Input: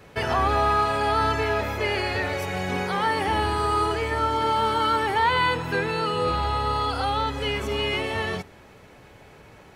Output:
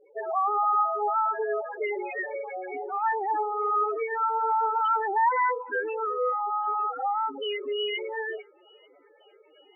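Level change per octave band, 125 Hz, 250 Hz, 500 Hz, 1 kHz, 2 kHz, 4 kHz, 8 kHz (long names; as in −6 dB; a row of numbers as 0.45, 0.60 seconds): below −40 dB, below −10 dB, −3.5 dB, −1.5 dB, −6.5 dB, −9.0 dB, below −35 dB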